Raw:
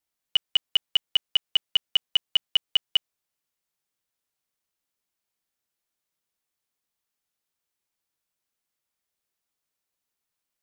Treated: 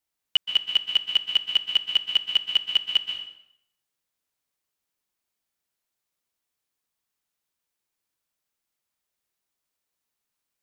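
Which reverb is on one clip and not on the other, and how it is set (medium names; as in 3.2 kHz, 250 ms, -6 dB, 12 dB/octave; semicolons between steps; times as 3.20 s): plate-style reverb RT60 0.75 s, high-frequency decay 0.85×, pre-delay 115 ms, DRR 5 dB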